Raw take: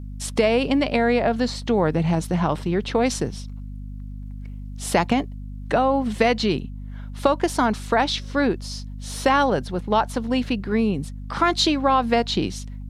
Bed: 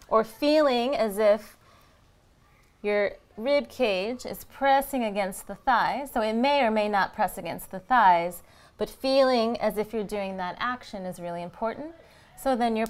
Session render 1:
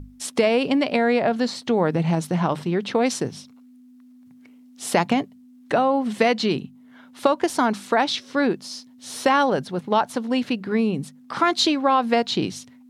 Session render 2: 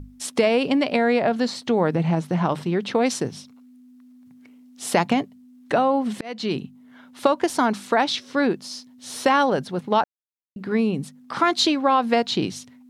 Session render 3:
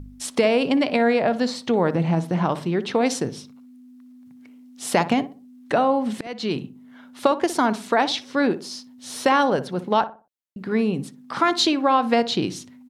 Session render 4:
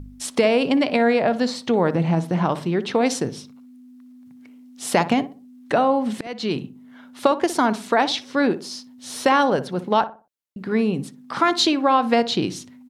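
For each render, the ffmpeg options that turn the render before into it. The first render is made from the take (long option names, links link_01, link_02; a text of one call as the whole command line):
ffmpeg -i in.wav -af "bandreject=frequency=50:width_type=h:width=6,bandreject=frequency=100:width_type=h:width=6,bandreject=frequency=150:width_type=h:width=6,bandreject=frequency=200:width_type=h:width=6" out.wav
ffmpeg -i in.wav -filter_complex "[0:a]asettb=1/sr,asplit=3[link_01][link_02][link_03];[link_01]atrim=end=1.944[link_04];[link_02]atrim=start=1.94:end=2.45,asetpts=PTS-STARTPTS,afade=type=in:duration=0.004:curve=qsin,afade=type=out:start_time=0.506:duration=0.004:curve=qsin,acrossover=split=2800[link_05][link_06];[link_06]acompressor=threshold=-46dB:ratio=4:attack=1:release=60[link_07];[link_05][link_07]amix=inputs=2:normalize=0[link_08];[link_03]atrim=start=2.446[link_09];[link_04][link_08]acrossfade=duration=0.004:curve1=hsin:curve2=qsin[link_10];[link_10][link_09]acrossfade=duration=0.004:curve1=qsin:curve2=hsin,asplit=4[link_11][link_12][link_13][link_14];[link_11]atrim=end=6.21,asetpts=PTS-STARTPTS,afade=type=out:start_time=6.206:duration=0.004:curve=hsin[link_15];[link_12]atrim=start=6.21:end=10.04,asetpts=PTS-STARTPTS,afade=type=in:duration=0.4,afade=type=out:start_time=3.826:duration=0.004:curve=hsin[link_16];[link_13]atrim=start=10.04:end=10.56,asetpts=PTS-STARTPTS,volume=0[link_17];[link_14]atrim=start=10.56,asetpts=PTS-STARTPTS,afade=type=in:duration=0.004:curve=hsin[link_18];[link_15][link_16][link_17][link_18]concat=n=4:v=0:a=1" out.wav
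ffmpeg -i in.wav -filter_complex "[0:a]asplit=2[link_01][link_02];[link_02]adelay=60,lowpass=frequency=1300:poles=1,volume=-12.5dB,asplit=2[link_03][link_04];[link_04]adelay=60,lowpass=frequency=1300:poles=1,volume=0.35,asplit=2[link_05][link_06];[link_06]adelay=60,lowpass=frequency=1300:poles=1,volume=0.35,asplit=2[link_07][link_08];[link_08]adelay=60,lowpass=frequency=1300:poles=1,volume=0.35[link_09];[link_01][link_03][link_05][link_07][link_09]amix=inputs=5:normalize=0" out.wav
ffmpeg -i in.wav -af "volume=1dB" out.wav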